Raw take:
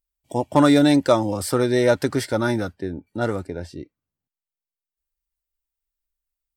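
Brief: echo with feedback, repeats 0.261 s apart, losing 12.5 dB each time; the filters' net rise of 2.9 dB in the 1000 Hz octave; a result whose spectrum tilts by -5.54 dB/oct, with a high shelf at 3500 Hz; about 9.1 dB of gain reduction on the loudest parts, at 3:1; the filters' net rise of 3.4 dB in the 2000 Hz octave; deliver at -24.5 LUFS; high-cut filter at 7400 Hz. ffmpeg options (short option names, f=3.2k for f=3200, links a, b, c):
-af "lowpass=7.4k,equalizer=f=1k:t=o:g=3,equalizer=f=2k:t=o:g=5,highshelf=f=3.5k:g=-6.5,acompressor=threshold=-22dB:ratio=3,aecho=1:1:261|522|783:0.237|0.0569|0.0137,volume=2dB"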